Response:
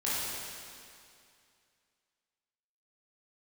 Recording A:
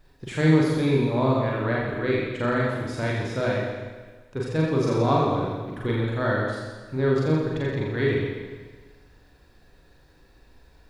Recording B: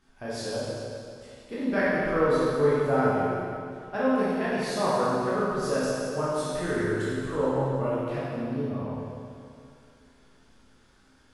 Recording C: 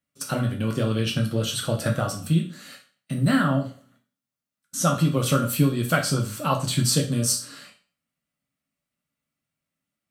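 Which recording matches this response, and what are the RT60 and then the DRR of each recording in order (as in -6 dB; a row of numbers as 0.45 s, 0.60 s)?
B; 1.4 s, 2.4 s, 0.40 s; -4.5 dB, -10.0 dB, 0.0 dB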